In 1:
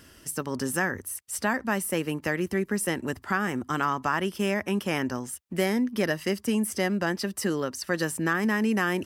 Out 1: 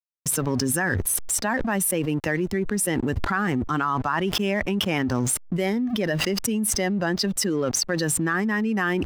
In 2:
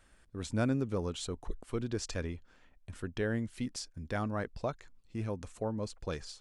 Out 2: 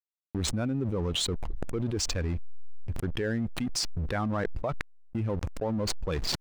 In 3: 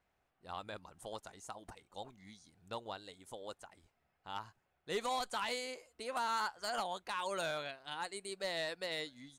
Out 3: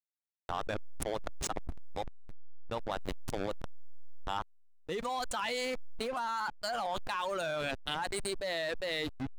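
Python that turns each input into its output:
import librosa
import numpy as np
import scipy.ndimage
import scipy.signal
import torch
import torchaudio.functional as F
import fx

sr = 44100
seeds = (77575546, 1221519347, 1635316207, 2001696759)

y = fx.bin_expand(x, sr, power=1.5)
y = fx.backlash(y, sr, play_db=-46.0)
y = fx.high_shelf(y, sr, hz=5800.0, db=-5.5)
y = fx.env_flatten(y, sr, amount_pct=100)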